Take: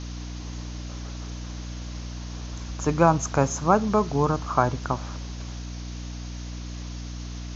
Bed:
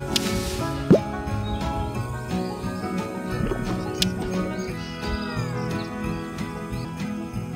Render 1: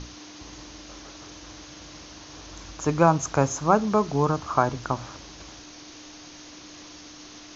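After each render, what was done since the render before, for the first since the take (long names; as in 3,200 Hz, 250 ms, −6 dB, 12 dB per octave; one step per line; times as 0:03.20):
mains-hum notches 60/120/180/240 Hz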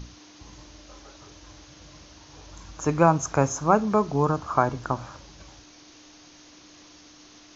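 noise reduction from a noise print 6 dB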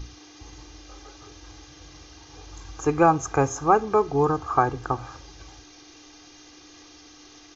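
comb filter 2.5 ms, depth 68%
dynamic equaliser 5,500 Hz, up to −4 dB, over −45 dBFS, Q 0.77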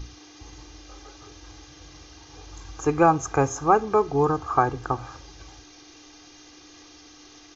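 no processing that can be heard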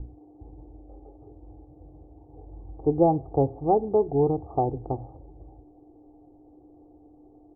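Butterworth low-pass 770 Hz 48 dB per octave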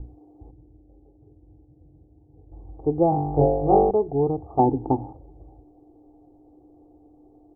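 0:00.51–0:02.52: resonant band-pass 140 Hz, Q 0.86
0:03.10–0:03.91: flutter between parallel walls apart 3.5 metres, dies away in 0.92 s
0:04.59–0:05.13: hollow resonant body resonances 260/870 Hz, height 13 dB, ringing for 20 ms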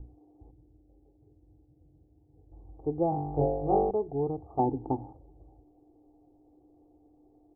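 level −8 dB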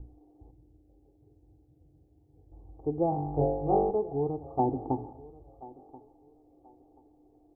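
feedback echo with a high-pass in the loop 1,032 ms, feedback 26%, high-pass 270 Hz, level −18.5 dB
four-comb reverb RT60 0.86 s, combs from 27 ms, DRR 15 dB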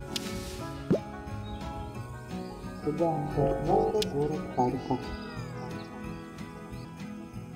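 mix in bed −11 dB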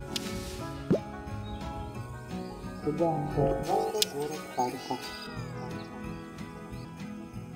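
0:03.63–0:05.27: spectral tilt +3.5 dB per octave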